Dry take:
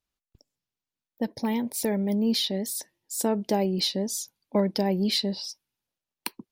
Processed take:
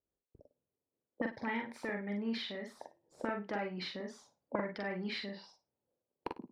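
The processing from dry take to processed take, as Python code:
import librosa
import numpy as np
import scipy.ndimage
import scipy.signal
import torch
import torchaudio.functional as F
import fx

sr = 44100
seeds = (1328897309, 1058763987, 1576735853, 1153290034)

y = fx.diode_clip(x, sr, knee_db=-12.0)
y = fx.recorder_agc(y, sr, target_db=-15.5, rise_db_per_s=8.3, max_gain_db=30)
y = fx.riaa(y, sr, side='playback')
y = fx.auto_wah(y, sr, base_hz=470.0, top_hz=1800.0, q=2.8, full_db=-18.5, direction='up')
y = fx.doubler(y, sr, ms=44.0, db=-3.5)
y = fx.room_flutter(y, sr, wall_m=9.6, rt60_s=0.23)
y = y * 10.0 ** (2.5 / 20.0)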